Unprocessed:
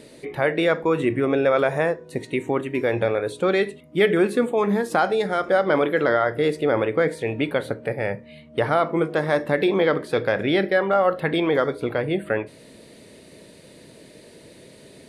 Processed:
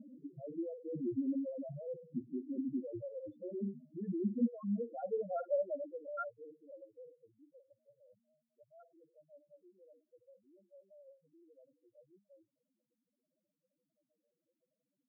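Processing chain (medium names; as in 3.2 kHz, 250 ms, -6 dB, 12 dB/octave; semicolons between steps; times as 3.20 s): reverse; compression 6:1, threshold -29 dBFS, peak gain reduction 14.5 dB; reverse; vibrato 10 Hz 33 cents; comb of notches 420 Hz; loudest bins only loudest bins 2; band-pass sweep 220 Hz -> 7.5 kHz, 4.40–7.77 s; trim +6 dB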